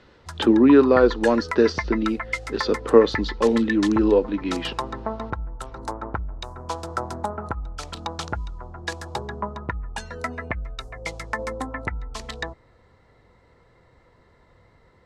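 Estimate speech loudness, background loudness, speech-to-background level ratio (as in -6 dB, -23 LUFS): -19.5 LUFS, -31.5 LUFS, 12.0 dB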